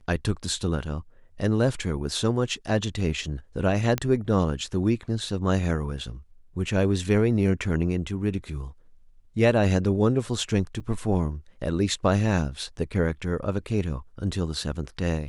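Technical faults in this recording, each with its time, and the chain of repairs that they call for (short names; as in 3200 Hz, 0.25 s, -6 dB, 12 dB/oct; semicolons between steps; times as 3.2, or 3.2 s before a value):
3.98 pop -11 dBFS
10.8–10.81 gap 5.5 ms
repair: de-click; interpolate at 10.8, 5.5 ms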